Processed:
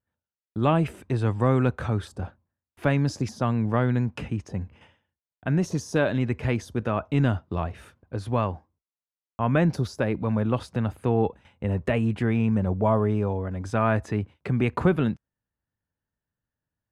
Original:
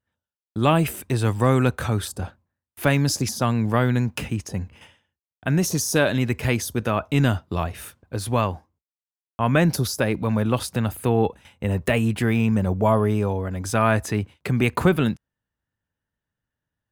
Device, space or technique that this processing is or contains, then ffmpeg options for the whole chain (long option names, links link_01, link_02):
through cloth: -af "lowpass=8300,highshelf=frequency=3000:gain=-13,volume=-2.5dB"